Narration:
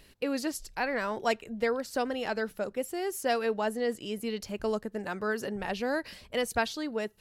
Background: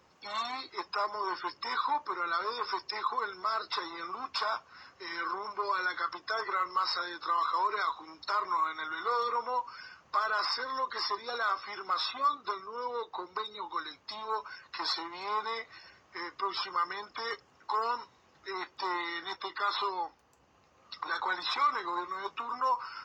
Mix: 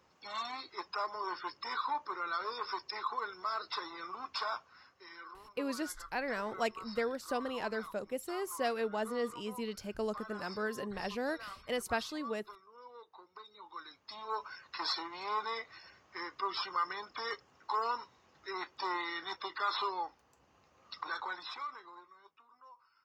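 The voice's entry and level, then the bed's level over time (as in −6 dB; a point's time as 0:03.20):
5.35 s, −5.5 dB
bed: 0:04.60 −4.5 dB
0:05.36 −17 dB
0:13.31 −17 dB
0:14.43 −2.5 dB
0:20.98 −2.5 dB
0:22.48 −28 dB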